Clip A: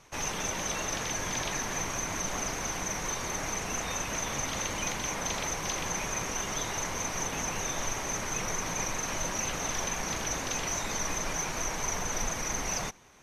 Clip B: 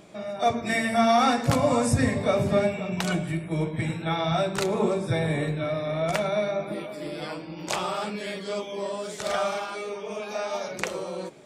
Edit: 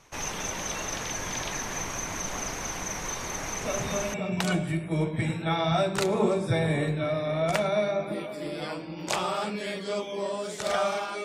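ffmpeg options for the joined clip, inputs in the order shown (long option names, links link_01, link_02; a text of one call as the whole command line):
ffmpeg -i cue0.wav -i cue1.wav -filter_complex "[1:a]asplit=2[link_01][link_02];[0:a]apad=whole_dur=11.24,atrim=end=11.24,atrim=end=4.142[link_03];[link_02]atrim=start=2.738:end=9.84[link_04];[link_01]atrim=start=2.21:end=2.74,asetpts=PTS-STARTPTS,volume=-9.5dB,afade=type=in:duration=0.004:curve=hsin,afade=type=out:start_time=0.526:duration=0.004:curve=hsin,adelay=159201S[link_05];[link_03][link_04]acrossfade=duration=0.004:curve1=hsin:curve2=hsin[link_06];[link_06][link_05]amix=inputs=2:normalize=0" out.wav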